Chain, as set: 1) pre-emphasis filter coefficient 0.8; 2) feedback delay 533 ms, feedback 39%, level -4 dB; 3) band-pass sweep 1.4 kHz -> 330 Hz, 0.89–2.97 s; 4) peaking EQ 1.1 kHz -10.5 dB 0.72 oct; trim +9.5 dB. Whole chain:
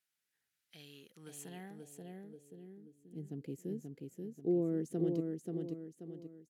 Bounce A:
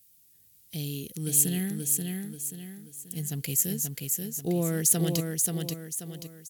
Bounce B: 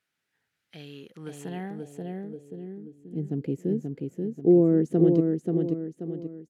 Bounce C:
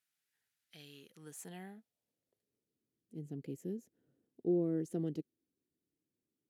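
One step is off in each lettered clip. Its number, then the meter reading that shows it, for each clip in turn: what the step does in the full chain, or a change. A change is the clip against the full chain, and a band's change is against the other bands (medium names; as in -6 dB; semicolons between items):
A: 3, 8 kHz band +20.5 dB; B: 1, loudness change +14.0 LU; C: 2, momentary loudness spread change +2 LU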